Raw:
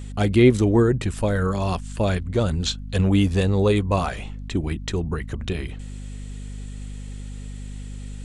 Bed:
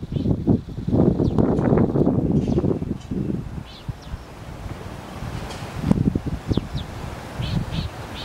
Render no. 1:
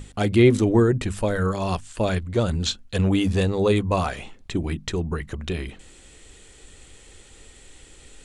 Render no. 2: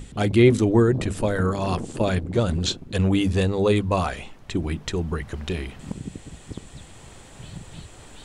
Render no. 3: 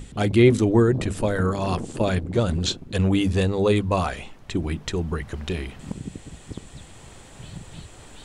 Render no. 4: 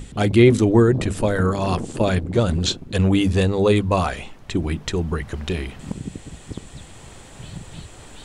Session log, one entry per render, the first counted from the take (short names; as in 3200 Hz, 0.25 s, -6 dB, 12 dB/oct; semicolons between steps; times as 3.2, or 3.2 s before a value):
notches 50/100/150/200/250 Hz
add bed -15 dB
nothing audible
gain +3 dB; limiter -3 dBFS, peak gain reduction 1.5 dB